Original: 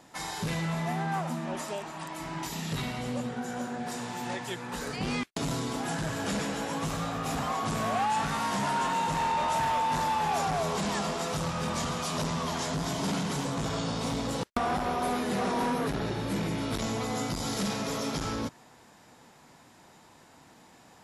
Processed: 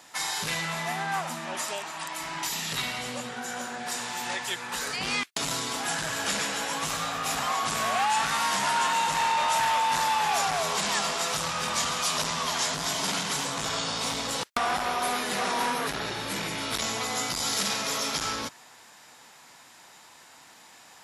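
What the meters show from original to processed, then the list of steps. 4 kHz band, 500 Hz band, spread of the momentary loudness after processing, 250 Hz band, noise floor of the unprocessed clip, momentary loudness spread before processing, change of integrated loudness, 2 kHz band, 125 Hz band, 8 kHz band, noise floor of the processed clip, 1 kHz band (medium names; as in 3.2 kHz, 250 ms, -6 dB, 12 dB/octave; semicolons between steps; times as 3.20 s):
+8.5 dB, -1.5 dB, 7 LU, -6.5 dB, -56 dBFS, 7 LU, +3.5 dB, +7.0 dB, -8.0 dB, +9.0 dB, -52 dBFS, +3.0 dB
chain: tilt shelf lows -9 dB, about 650 Hz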